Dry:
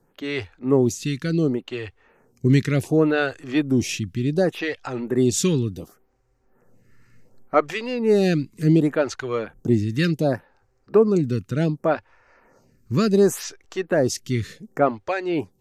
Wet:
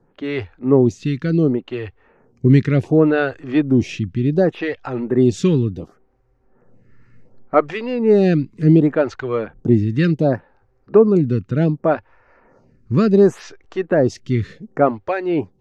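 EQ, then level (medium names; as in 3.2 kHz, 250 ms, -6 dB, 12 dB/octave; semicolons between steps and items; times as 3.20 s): tape spacing loss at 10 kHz 25 dB; +5.5 dB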